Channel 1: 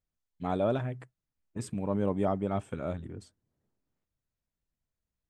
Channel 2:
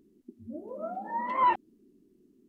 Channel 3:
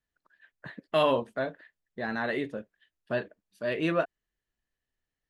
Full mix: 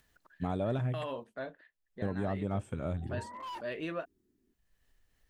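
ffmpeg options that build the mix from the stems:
-filter_complex "[0:a]equalizer=f=77:w=0.53:g=8,highshelf=f=5k:g=5.5,volume=0dB,asplit=3[a][b][c];[a]atrim=end=1.24,asetpts=PTS-STARTPTS,afade=t=out:st=1.236:d=0.004:c=hsin[d];[b]atrim=start=1.24:end=2.02,asetpts=PTS-STARTPTS,volume=0[e];[c]atrim=start=2.02,asetpts=PTS-STARTPTS,afade=t=in:d=0.004:c=hsin[f];[d][e][f]concat=n=3:v=0:a=1,asplit=2[g][h];[1:a]lowpass=2.1k,asoftclip=type=hard:threshold=-27dB,adelay=2050,volume=-12.5dB[i];[2:a]asubboost=boost=3:cutoff=62,acompressor=mode=upward:threshold=-45dB:ratio=2.5,alimiter=limit=-20.5dB:level=0:latency=1:release=460,volume=-7dB[j];[h]apad=whole_len=200024[k];[i][k]sidechaincompress=threshold=-34dB:ratio=8:attack=16:release=390[l];[g][l][j]amix=inputs=3:normalize=0,alimiter=limit=-23.5dB:level=0:latency=1:release=357"

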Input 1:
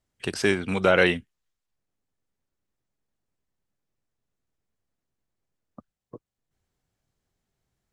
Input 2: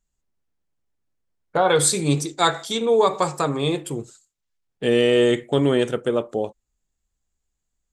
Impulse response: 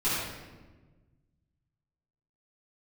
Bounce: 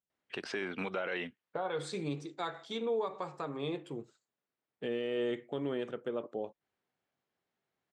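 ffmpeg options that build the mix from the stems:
-filter_complex "[0:a]lowshelf=f=220:g=-11.5,alimiter=limit=-17.5dB:level=0:latency=1:release=47,adelay=100,volume=-0.5dB[a];[1:a]volume=-11.5dB[b];[a][b]amix=inputs=2:normalize=0,highpass=160,lowpass=3.2k,alimiter=level_in=2dB:limit=-24dB:level=0:latency=1:release=242,volume=-2dB"

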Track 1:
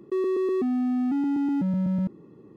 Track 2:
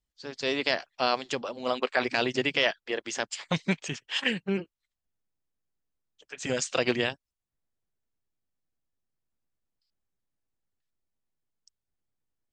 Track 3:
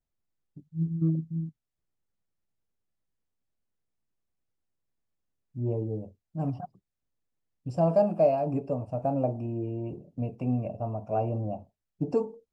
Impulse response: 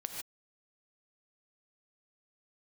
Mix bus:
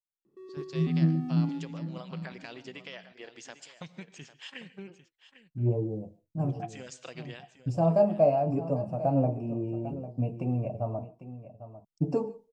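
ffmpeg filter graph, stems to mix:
-filter_complex "[0:a]adelay=250,volume=-12dB,asplit=3[a][b][c];[b]volume=-9dB[d];[c]volume=-23dB[e];[1:a]acompressor=threshold=-27dB:ratio=4,adelay=300,volume=-15dB,asplit=3[f][g][h];[g]volume=-10dB[i];[h]volume=-12dB[j];[2:a]flanger=delay=5.5:depth=8.8:regen=42:speed=0.67:shape=sinusoidal,agate=range=-33dB:threshold=-56dB:ratio=3:detection=peak,volume=2.5dB,asplit=3[k][l][m];[k]atrim=end=11.05,asetpts=PTS-STARTPTS,afade=t=out:st=11.046:d=0.004:c=hsin[n];[l]atrim=start=11.05:end=11.78,asetpts=PTS-STARTPTS,volume=0[o];[m]atrim=start=11.78,asetpts=PTS-STARTPTS,afade=t=in:d=0.004:c=hsin[p];[n][o][p]concat=n=3:v=0:a=1,asplit=4[q][r][s][t];[r]volume=-13.5dB[u];[s]volume=-12.5dB[v];[t]apad=whole_len=124064[w];[a][w]sidechaingate=range=-33dB:threshold=-45dB:ratio=16:detection=peak[x];[3:a]atrim=start_sample=2205[y];[d][i][u]amix=inputs=3:normalize=0[z];[z][y]afir=irnorm=-1:irlink=0[aa];[e][j][v]amix=inputs=3:normalize=0,aecho=0:1:799:1[ab];[x][f][q][aa][ab]amix=inputs=5:normalize=0,equalizer=f=150:t=o:w=0.57:g=3.5,adynamicequalizer=threshold=0.00708:dfrequency=2900:dqfactor=0.7:tfrequency=2900:tqfactor=0.7:attack=5:release=100:ratio=0.375:range=2:mode=cutabove:tftype=highshelf"

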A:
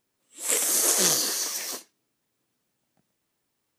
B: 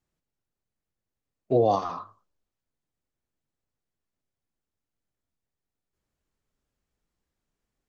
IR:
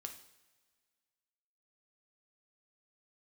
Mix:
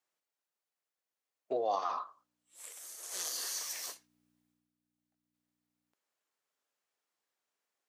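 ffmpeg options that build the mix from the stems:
-filter_complex "[0:a]aeval=exprs='val(0)+0.00708*(sin(2*PI*60*n/s)+sin(2*PI*2*60*n/s)/2+sin(2*PI*3*60*n/s)/3+sin(2*PI*4*60*n/s)/4+sin(2*PI*5*60*n/s)/5)':c=same,acompressor=threshold=-25dB:ratio=6,adelay=2150,volume=-8dB,afade=t=in:st=3.02:d=0.23:silence=0.251189,afade=t=out:st=4.29:d=0.42:silence=0.281838[a];[1:a]acompressor=threshold=-24dB:ratio=6,volume=0dB,asplit=3[b][c][d];[b]atrim=end=4.54,asetpts=PTS-STARTPTS,afade=t=out:st=4.536:d=0.004:c=hsin[e];[c]atrim=start=4.54:end=5.34,asetpts=PTS-STARTPTS,volume=0[f];[d]atrim=start=5.34,asetpts=PTS-STARTPTS,afade=t=in:d=0.004:c=hsin[g];[e][f][g]concat=n=3:v=0:a=1[h];[a][h]amix=inputs=2:normalize=0,highpass=610"

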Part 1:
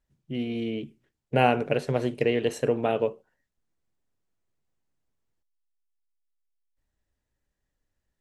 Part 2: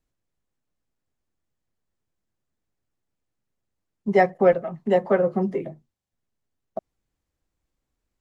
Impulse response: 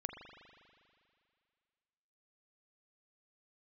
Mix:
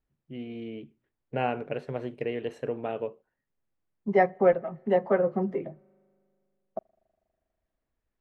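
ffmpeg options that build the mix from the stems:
-filter_complex "[0:a]volume=-7dB[a];[1:a]volume=-4dB,asplit=2[b][c];[c]volume=-23.5dB[d];[2:a]atrim=start_sample=2205[e];[d][e]afir=irnorm=-1:irlink=0[f];[a][b][f]amix=inputs=3:normalize=0,bass=f=250:g=-2,treble=f=4k:g=-15"

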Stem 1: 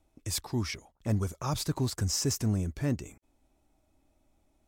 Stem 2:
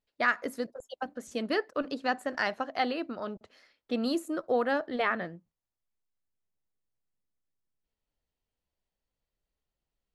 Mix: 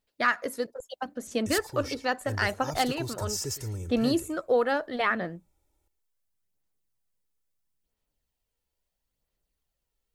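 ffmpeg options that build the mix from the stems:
-filter_complex "[0:a]aecho=1:1:2.2:0.79,adelay=1200,volume=-7.5dB,asplit=2[a][b];[b]volume=-16.5dB[c];[1:a]aphaser=in_gain=1:out_gain=1:delay=2.3:decay=0.34:speed=0.75:type=sinusoidal,volume=1.5dB[d];[c]aecho=0:1:113:1[e];[a][d][e]amix=inputs=3:normalize=0,highshelf=f=6.3k:g=7.5"

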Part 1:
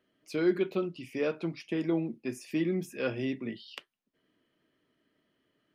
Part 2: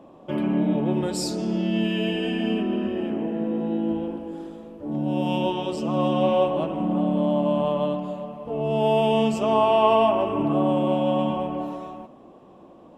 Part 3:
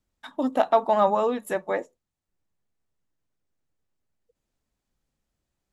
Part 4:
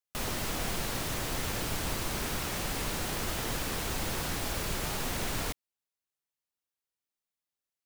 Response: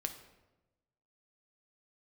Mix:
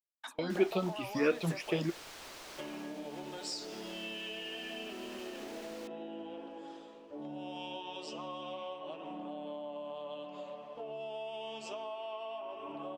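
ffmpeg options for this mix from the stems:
-filter_complex "[0:a]dynaudnorm=f=410:g=3:m=7dB,asplit=2[a][b];[b]afreqshift=3[c];[a][c]amix=inputs=2:normalize=1,volume=-2dB[d];[1:a]lowpass=5.4k,aemphasis=mode=production:type=75kf,flanger=delay=6.3:depth=1.5:regen=58:speed=0.16:shape=triangular,adelay=2300,volume=-3.5dB[e];[2:a]agate=range=-33dB:threshold=-51dB:ratio=3:detection=peak,alimiter=limit=-23.5dB:level=0:latency=1,volume=-3.5dB,asplit=2[f][g];[3:a]adelay=350,volume=-13dB[h];[g]apad=whole_len=253535[i];[d][i]sidechaingate=range=-39dB:threshold=-45dB:ratio=16:detection=peak[j];[e][f][h]amix=inputs=3:normalize=0,acrossover=split=340 6300:gain=0.141 1 0.224[k][l][m];[k][l][m]amix=inputs=3:normalize=0,acompressor=threshold=-40dB:ratio=8,volume=0dB[n];[j][n]amix=inputs=2:normalize=0,highshelf=f=4.2k:g=6.5"

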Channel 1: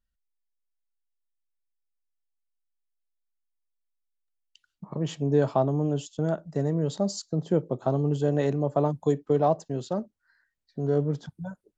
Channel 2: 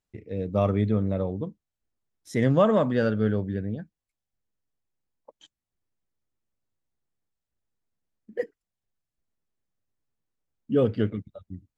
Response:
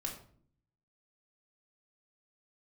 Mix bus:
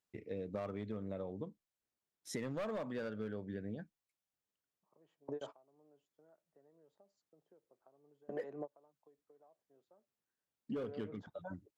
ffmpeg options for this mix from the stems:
-filter_complex "[0:a]acrossover=split=340 2200:gain=0.0891 1 0.141[a][b][c];[a][b][c]amix=inputs=3:normalize=0,acompressor=threshold=-31dB:ratio=12,volume=-4dB[d];[1:a]highpass=f=290:p=1,volume=20dB,asoftclip=hard,volume=-20dB,volume=-2.5dB,asplit=2[e][f];[f]apad=whole_len=519441[g];[d][g]sidechaingate=range=-28dB:threshold=-60dB:ratio=16:detection=peak[h];[h][e]amix=inputs=2:normalize=0,acompressor=threshold=-38dB:ratio=10"

